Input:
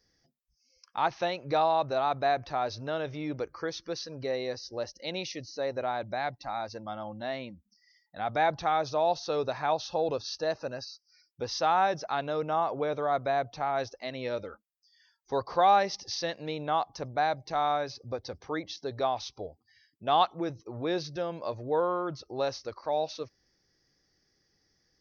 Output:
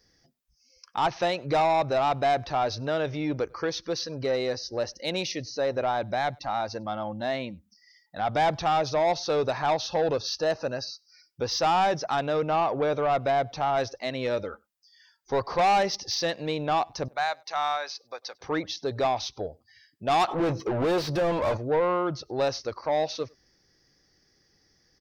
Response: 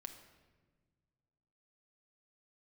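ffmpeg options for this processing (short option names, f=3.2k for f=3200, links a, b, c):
-filter_complex "[0:a]asettb=1/sr,asplit=3[a][b][c];[a]atrim=end=17.084[d];[b]atrim=start=17.08:end=18.41,asetpts=PTS-STARTPTS,afade=t=in:d=0.004:c=qsin,afade=t=out:st=1.326:d=0.004:c=qsin,highpass=1k[e];[c]atrim=start=18.406[f];[d][e]acrossfade=d=0.004:c1=hsin:c2=qsin[g];[g][f]acrossfade=d=0.004:c1=qsin:c2=hsin,asoftclip=type=tanh:threshold=-24.5dB,asplit=3[h][i][j];[h]afade=t=out:st=20.27:d=0.02[k];[i]asplit=2[l][m];[m]highpass=f=720:p=1,volume=29dB,asoftclip=type=tanh:threshold=-25dB[n];[l][n]amix=inputs=2:normalize=0,lowpass=f=1.4k:p=1,volume=-6dB,afade=t=in:st=20.27:d=0.02,afade=t=out:st=21.56:d=0.02[o];[j]afade=t=in:st=21.56:d=0.02[p];[k][o][p]amix=inputs=3:normalize=0,asplit=2[q][r];[r]adelay=99.13,volume=-29dB,highshelf=f=4k:g=-2.23[s];[q][s]amix=inputs=2:normalize=0,volume=6.5dB"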